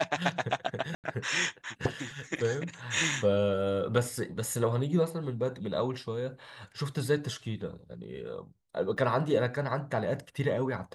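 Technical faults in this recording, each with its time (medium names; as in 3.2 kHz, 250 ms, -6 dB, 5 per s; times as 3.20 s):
0.95–1.04 s: dropout 88 ms
8.97–8.98 s: dropout 5.8 ms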